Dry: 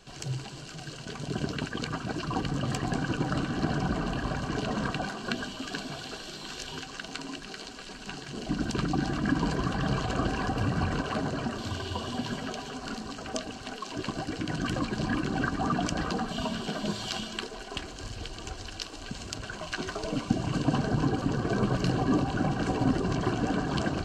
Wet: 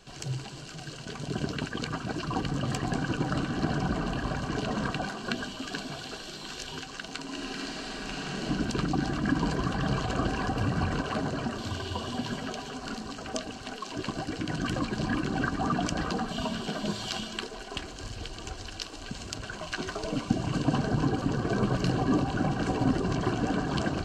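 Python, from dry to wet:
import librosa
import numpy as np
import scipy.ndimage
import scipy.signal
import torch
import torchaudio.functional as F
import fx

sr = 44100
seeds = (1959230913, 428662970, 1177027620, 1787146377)

y = fx.reverb_throw(x, sr, start_s=7.26, length_s=1.18, rt60_s=2.9, drr_db=-4.0)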